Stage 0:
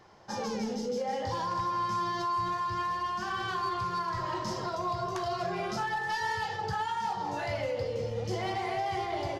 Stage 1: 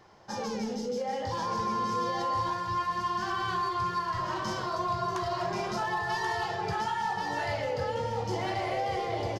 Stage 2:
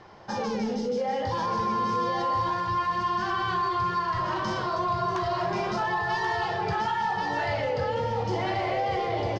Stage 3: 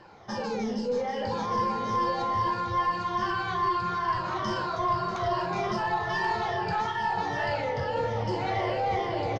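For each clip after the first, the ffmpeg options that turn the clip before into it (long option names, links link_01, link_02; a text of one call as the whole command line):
ffmpeg -i in.wav -af "aecho=1:1:1083:0.596" out.wav
ffmpeg -i in.wav -filter_complex "[0:a]lowpass=4500,asplit=2[link_01][link_02];[link_02]alimiter=level_in=8dB:limit=-24dB:level=0:latency=1,volume=-8dB,volume=2.5dB[link_03];[link_01][link_03]amix=inputs=2:normalize=0" out.wav
ffmpeg -i in.wav -filter_complex "[0:a]afftfilt=real='re*pow(10,9/40*sin(2*PI*(1.3*log(max(b,1)*sr/1024/100)/log(2)-(-2.4)*(pts-256)/sr)))':imag='im*pow(10,9/40*sin(2*PI*(1.3*log(max(b,1)*sr/1024/100)/log(2)-(-2.4)*(pts-256)/sr)))':win_size=1024:overlap=0.75,asplit=2[link_01][link_02];[link_02]adelay=641.4,volume=-9dB,highshelf=frequency=4000:gain=-14.4[link_03];[link_01][link_03]amix=inputs=2:normalize=0,aeval=exprs='0.188*(cos(1*acos(clip(val(0)/0.188,-1,1)))-cos(1*PI/2))+0.015*(cos(2*acos(clip(val(0)/0.188,-1,1)))-cos(2*PI/2))':channel_layout=same,volume=-2.5dB" out.wav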